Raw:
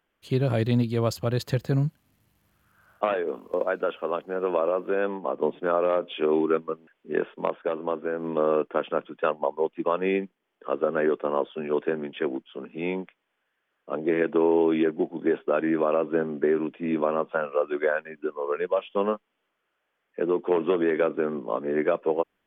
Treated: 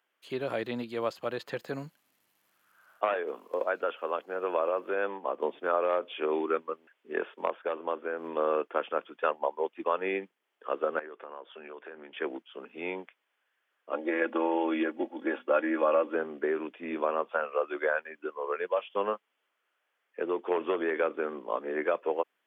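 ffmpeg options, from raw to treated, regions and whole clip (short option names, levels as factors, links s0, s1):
-filter_complex "[0:a]asettb=1/sr,asplit=3[s0][s1][s2];[s0]atrim=end=10.994[s3];[s1]atrim=start=10.99:end=12.15,asetpts=PTS-STARTPTS,afade=t=in:d=0.004:c=qsin,afade=t=out:st=1.156:d=0.004:c=qsin,lowpass=f=2600:p=1,equalizer=f=1800:w=0.5:g=5,acompressor=threshold=0.0141:ratio=5:attack=3.2:release=140:knee=1:detection=peak[s4];[s2]atrim=start=12.146[s5];[s3][s4]acrossfade=d=0.004:c1=hsin:c2=qsin[s6];[s6][s5]acrossfade=d=0.004:c1=qsin:c2=hsin,asettb=1/sr,asplit=3[s7][s8][s9];[s7]atrim=end=13.924[s10];[s8]atrim=start=13.92:end=16.15,asetpts=PTS-STARTPTS,afade=t=in:d=0.004:c=qsin,afade=t=out:st=2.226:d=0.004:c=qsin,highpass=150,bandreject=f=50:t=h:w=6,bandreject=f=100:t=h:w=6,bandreject=f=150:t=h:w=6,bandreject=f=200:t=h:w=6,bandreject=f=250:t=h:w=6,aecho=1:1:3.6:0.74,atrim=end_sample=98343[s11];[s9]atrim=start=16.146[s12];[s10][s11]acrossfade=d=0.004:c1=hsin:c2=qsin[s13];[s13][s12]acrossfade=d=0.004:c1=qsin:c2=hsin,highpass=260,acrossover=split=3100[s14][s15];[s15]acompressor=threshold=0.002:ratio=4:attack=1:release=60[s16];[s14][s16]amix=inputs=2:normalize=0,lowshelf=f=430:g=-11"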